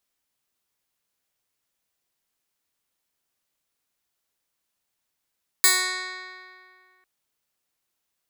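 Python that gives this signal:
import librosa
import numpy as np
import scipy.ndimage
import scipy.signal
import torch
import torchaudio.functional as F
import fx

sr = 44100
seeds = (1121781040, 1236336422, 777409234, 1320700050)

y = fx.pluck(sr, length_s=1.4, note=66, decay_s=2.22, pick=0.13, brightness='bright')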